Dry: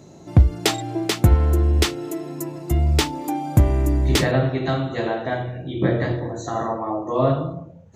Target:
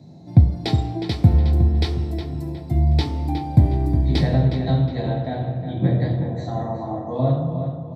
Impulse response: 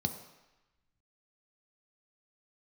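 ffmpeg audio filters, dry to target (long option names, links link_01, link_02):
-filter_complex "[0:a]acrossover=split=5500[link_01][link_02];[link_02]acompressor=threshold=-39dB:ratio=4:attack=1:release=60[link_03];[link_01][link_03]amix=inputs=2:normalize=0,asplit=2[link_04][link_05];[link_05]adelay=363,lowpass=frequency=3300:poles=1,volume=-8dB,asplit=2[link_06][link_07];[link_07]adelay=363,lowpass=frequency=3300:poles=1,volume=0.43,asplit=2[link_08][link_09];[link_09]adelay=363,lowpass=frequency=3300:poles=1,volume=0.43,asplit=2[link_10][link_11];[link_11]adelay=363,lowpass=frequency=3300:poles=1,volume=0.43,asplit=2[link_12][link_13];[link_13]adelay=363,lowpass=frequency=3300:poles=1,volume=0.43[link_14];[link_04][link_06][link_08][link_10][link_12][link_14]amix=inputs=6:normalize=0[link_15];[1:a]atrim=start_sample=2205,afade=type=out:start_time=0.31:duration=0.01,atrim=end_sample=14112,asetrate=41454,aresample=44100[link_16];[link_15][link_16]afir=irnorm=-1:irlink=0,volume=-11.5dB"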